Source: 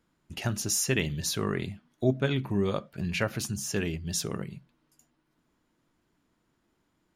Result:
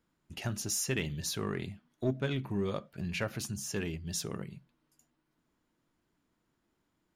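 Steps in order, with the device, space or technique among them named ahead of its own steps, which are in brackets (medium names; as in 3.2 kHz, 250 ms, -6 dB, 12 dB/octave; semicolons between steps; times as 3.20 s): parallel distortion (in parallel at -7 dB: hard clipper -25 dBFS, distortion -10 dB); on the sum: trim -8 dB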